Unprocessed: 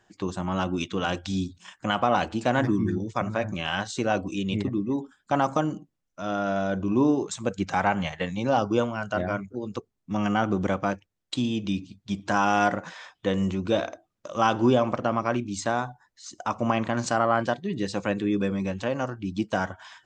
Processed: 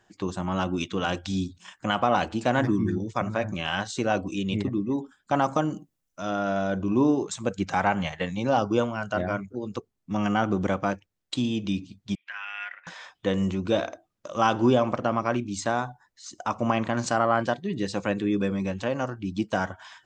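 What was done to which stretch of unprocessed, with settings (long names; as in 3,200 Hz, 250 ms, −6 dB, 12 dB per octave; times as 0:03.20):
0:05.72–0:06.30: high-shelf EQ 6,800 Hz +10.5 dB
0:12.15–0:12.87: flat-topped band-pass 2,200 Hz, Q 2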